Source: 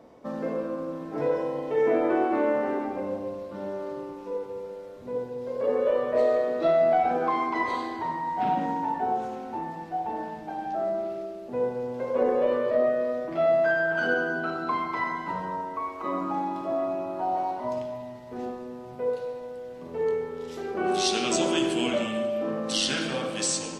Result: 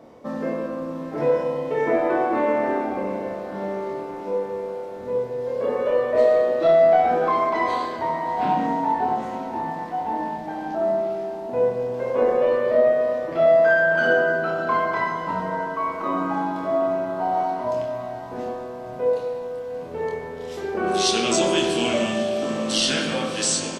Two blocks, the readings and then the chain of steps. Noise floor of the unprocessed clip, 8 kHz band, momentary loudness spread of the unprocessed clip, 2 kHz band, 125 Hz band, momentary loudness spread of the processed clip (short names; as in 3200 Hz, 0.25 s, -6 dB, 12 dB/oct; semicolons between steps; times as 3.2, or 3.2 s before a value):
-41 dBFS, n/a, 12 LU, +6.0 dB, +5.5 dB, 13 LU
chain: doubler 26 ms -4 dB; diffused feedback echo 0.658 s, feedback 63%, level -14 dB; gain +3.5 dB